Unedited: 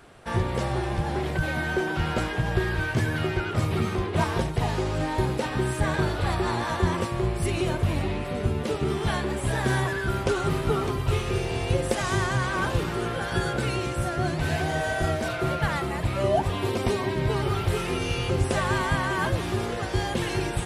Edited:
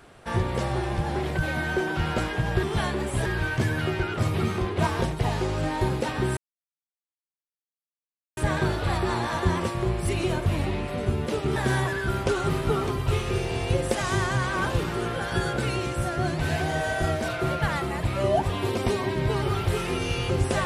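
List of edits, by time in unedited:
5.74 s: insert silence 2.00 s
8.93–9.56 s: move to 2.63 s

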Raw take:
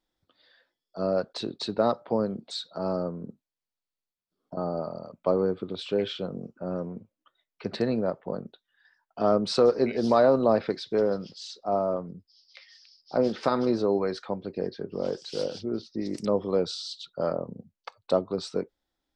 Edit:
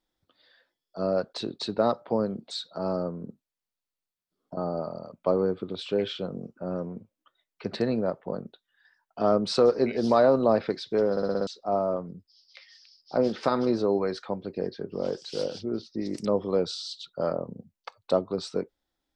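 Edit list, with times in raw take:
11.11 s: stutter in place 0.06 s, 6 plays

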